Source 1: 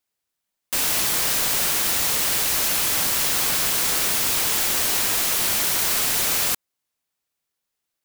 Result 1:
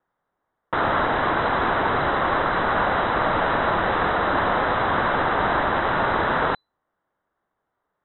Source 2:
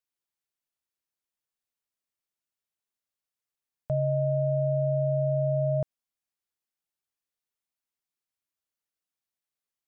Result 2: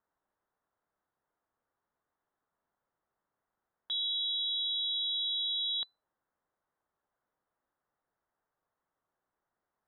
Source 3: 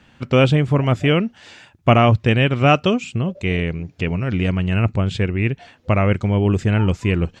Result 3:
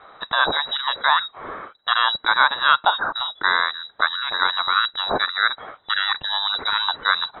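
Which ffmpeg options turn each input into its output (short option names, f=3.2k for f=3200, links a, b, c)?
-af "alimiter=limit=-8dB:level=0:latency=1:release=337,aexciter=amount=11.1:drive=8.8:freq=2.4k,lowpass=f=3.4k:t=q:w=0.5098,lowpass=f=3.4k:t=q:w=0.6013,lowpass=f=3.4k:t=q:w=0.9,lowpass=f=3.4k:t=q:w=2.563,afreqshift=-4000,volume=-7.5dB"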